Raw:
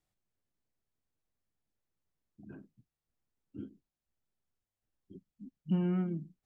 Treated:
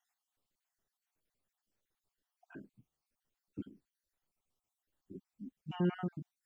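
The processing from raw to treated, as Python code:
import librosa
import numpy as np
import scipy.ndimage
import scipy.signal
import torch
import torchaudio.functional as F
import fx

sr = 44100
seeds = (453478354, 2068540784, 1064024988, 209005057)

y = fx.spec_dropout(x, sr, seeds[0], share_pct=49)
y = fx.low_shelf(y, sr, hz=250.0, db=-7.5)
y = y * librosa.db_to_amplitude(6.0)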